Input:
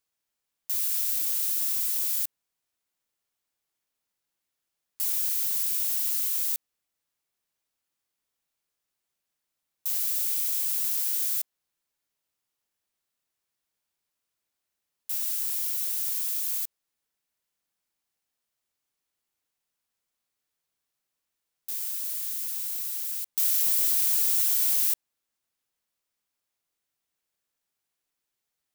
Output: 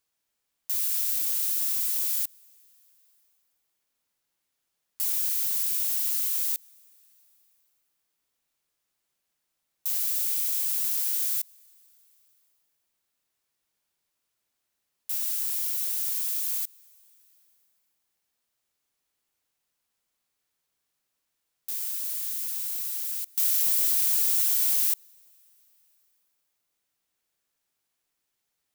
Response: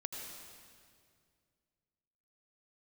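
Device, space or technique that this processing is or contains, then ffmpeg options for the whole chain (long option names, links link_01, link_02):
ducked reverb: -filter_complex "[0:a]asplit=3[link_01][link_02][link_03];[1:a]atrim=start_sample=2205[link_04];[link_02][link_04]afir=irnorm=-1:irlink=0[link_05];[link_03]apad=whole_len=1267527[link_06];[link_05][link_06]sidechaincompress=threshold=-42dB:ratio=20:attack=6.8:release=756,volume=-4dB[link_07];[link_01][link_07]amix=inputs=2:normalize=0"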